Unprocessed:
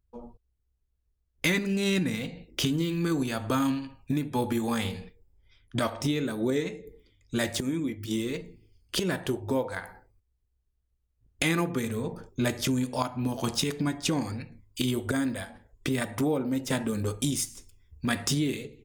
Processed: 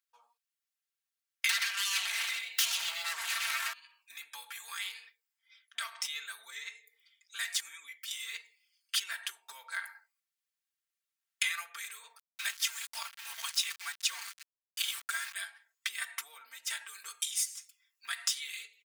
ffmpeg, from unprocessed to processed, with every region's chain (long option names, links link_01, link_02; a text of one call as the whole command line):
ffmpeg -i in.wav -filter_complex "[0:a]asettb=1/sr,asplit=3[link_01][link_02][link_03];[link_01]atrim=end=1.494[link_04];[link_02]atrim=start=1.49:end=3.73,asetpts=PTS-STARTPTS,afade=type=in:duration=0.004:curve=qsin,afade=type=out:start_time=2.236:duration=0.004:curve=qsin,aecho=1:1:94|125|193|222:0.211|0.501|0.133|0.168,atrim=end_sample=98784,acompressor=threshold=-27dB:ratio=12:attack=3.2:release=140:knee=1:detection=peak,aeval=exprs='0.188*sin(PI/2*7.94*val(0)/0.188)':channel_layout=same[link_05];[link_03]atrim=start=3.726[link_06];[link_04][link_05]acrossfade=duration=0.004:curve1=hsin:curve2=qsin[link_07];[link_07][link_06]acrossfade=duration=0.004:curve1=qsin:curve2=hsin,asettb=1/sr,asplit=3[link_08][link_09][link_10];[link_08]atrim=end=12.184[link_11];[link_09]atrim=start=12.18:end=15.34,asetpts=PTS-STARTPTS,afade=type=in:duration=0.004:curve=qsin,afade=type=out:start_time=3.156:duration=0.004:curve=qsin,highpass=450,aeval=exprs='val(0)*gte(abs(val(0)),0.0141)':channel_layout=same[link_12];[link_10]atrim=start=15.336[link_13];[link_11][link_12]acrossfade=duration=0.004:curve1=hsin:curve2=qsin[link_14];[link_14][link_13]acrossfade=duration=0.004:curve1=qsin:curve2=hsin,aecho=1:1:4.4:1,acompressor=threshold=-26dB:ratio=6,highpass=frequency=1400:width=0.5412,highpass=frequency=1400:width=1.3066" out.wav